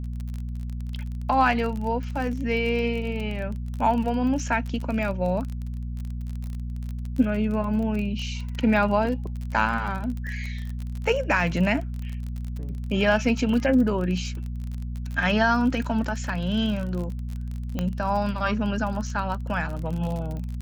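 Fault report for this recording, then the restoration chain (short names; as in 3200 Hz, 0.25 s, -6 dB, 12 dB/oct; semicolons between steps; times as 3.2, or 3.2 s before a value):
crackle 32/s -30 dBFS
hum 60 Hz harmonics 4 -31 dBFS
17.79 pop -14 dBFS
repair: de-click; de-hum 60 Hz, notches 4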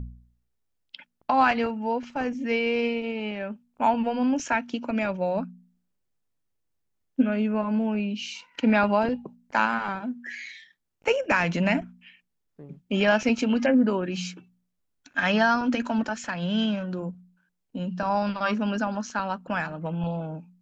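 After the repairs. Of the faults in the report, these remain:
none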